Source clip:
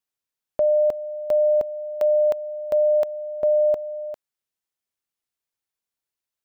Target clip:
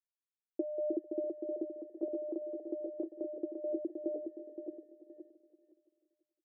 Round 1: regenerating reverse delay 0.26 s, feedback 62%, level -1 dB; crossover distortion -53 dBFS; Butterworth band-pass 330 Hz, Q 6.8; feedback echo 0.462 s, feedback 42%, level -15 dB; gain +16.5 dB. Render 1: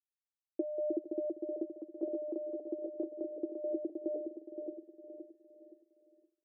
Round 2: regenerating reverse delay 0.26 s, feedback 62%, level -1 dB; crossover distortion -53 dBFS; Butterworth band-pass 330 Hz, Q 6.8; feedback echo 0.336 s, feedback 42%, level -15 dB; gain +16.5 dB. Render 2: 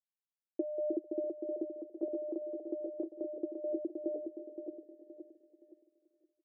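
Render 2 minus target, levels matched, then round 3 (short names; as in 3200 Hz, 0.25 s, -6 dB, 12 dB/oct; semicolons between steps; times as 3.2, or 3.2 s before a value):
crossover distortion: distortion -9 dB
regenerating reverse delay 0.26 s, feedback 62%, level -1 dB; crossover distortion -43 dBFS; Butterworth band-pass 330 Hz, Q 6.8; feedback echo 0.336 s, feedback 42%, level -15 dB; gain +16.5 dB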